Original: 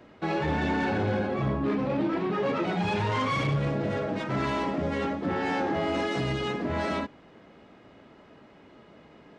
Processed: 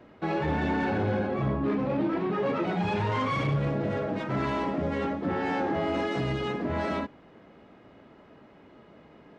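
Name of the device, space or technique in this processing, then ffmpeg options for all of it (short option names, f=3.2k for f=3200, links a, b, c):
behind a face mask: -af "highshelf=f=3.3k:g=-7.5"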